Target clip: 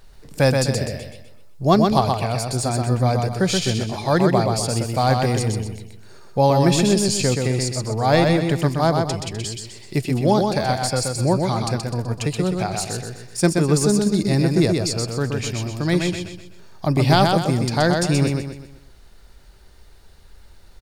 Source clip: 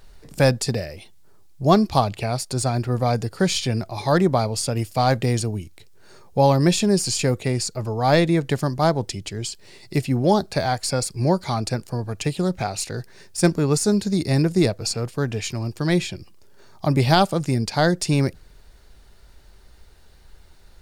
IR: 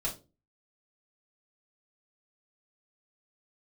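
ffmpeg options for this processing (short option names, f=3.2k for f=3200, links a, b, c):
-af "aecho=1:1:126|252|378|504|630:0.631|0.252|0.101|0.0404|0.0162"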